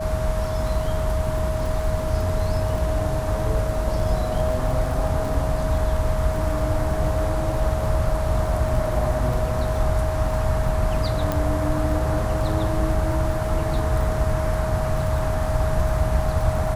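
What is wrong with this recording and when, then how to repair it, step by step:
crackle 34 per s -29 dBFS
whine 630 Hz -27 dBFS
11.32 s: pop -10 dBFS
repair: de-click; band-stop 630 Hz, Q 30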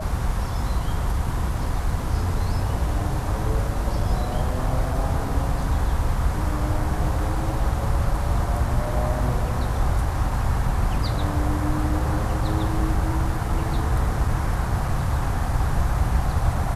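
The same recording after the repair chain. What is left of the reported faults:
nothing left

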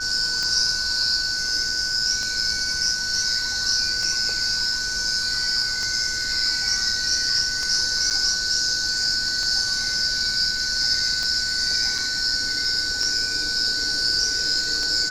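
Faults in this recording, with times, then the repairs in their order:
tick 33 1/3 rpm -14 dBFS
whine 1.5 kHz -28 dBFS
8.10–8.11 s: dropout 7.4 ms
11.98 s: dropout 4.5 ms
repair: de-click; band-stop 1.5 kHz, Q 30; interpolate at 8.10 s, 7.4 ms; interpolate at 11.98 s, 4.5 ms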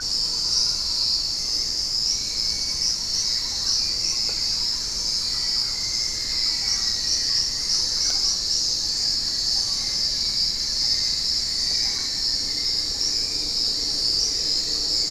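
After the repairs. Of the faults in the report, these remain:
nothing left

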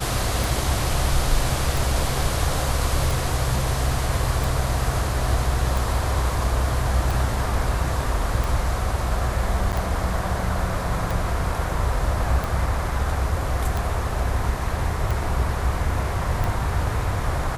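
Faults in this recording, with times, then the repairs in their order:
tick 45 rpm
9.72–9.73 s: dropout 7.8 ms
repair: de-click; interpolate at 9.72 s, 7.8 ms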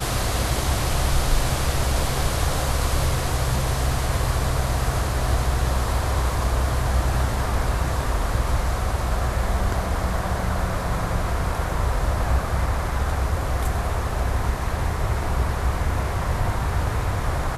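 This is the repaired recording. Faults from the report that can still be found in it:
nothing left

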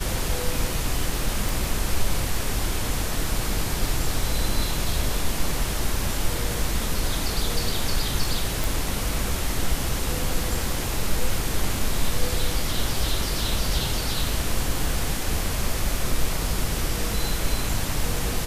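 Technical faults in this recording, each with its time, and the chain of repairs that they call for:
1.49 s: pop
8.64 s: pop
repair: de-click

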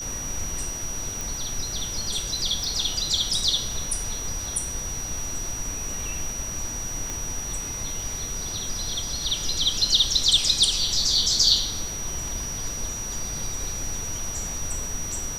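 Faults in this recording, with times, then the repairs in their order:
whine 5.8 kHz -31 dBFS
1.21 s: pop
2.64 s: pop
7.10 s: pop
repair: de-click; band-stop 5.8 kHz, Q 30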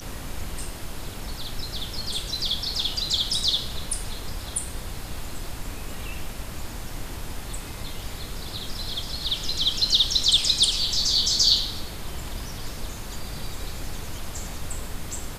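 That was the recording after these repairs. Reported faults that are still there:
nothing left

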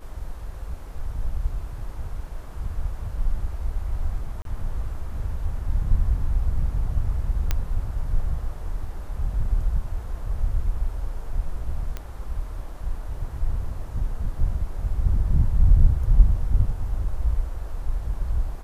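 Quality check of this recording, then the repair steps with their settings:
4.42–4.45 s: dropout 32 ms
7.51 s: pop -9 dBFS
11.97 s: pop -18 dBFS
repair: de-click; interpolate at 4.42 s, 32 ms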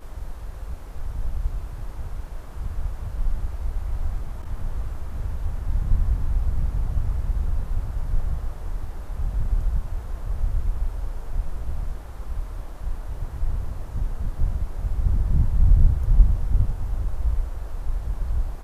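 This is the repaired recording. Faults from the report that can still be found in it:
nothing left

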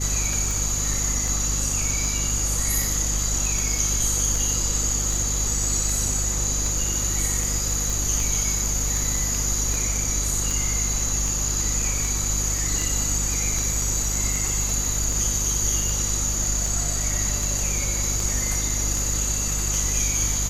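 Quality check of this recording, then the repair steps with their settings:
hum 50 Hz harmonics 5 -28 dBFS
tick 78 rpm
7.90 s: pop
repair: de-click; de-hum 50 Hz, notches 5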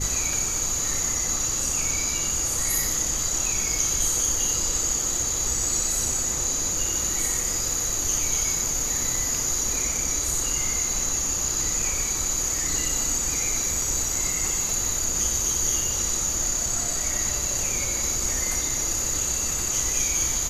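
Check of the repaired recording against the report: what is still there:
nothing left

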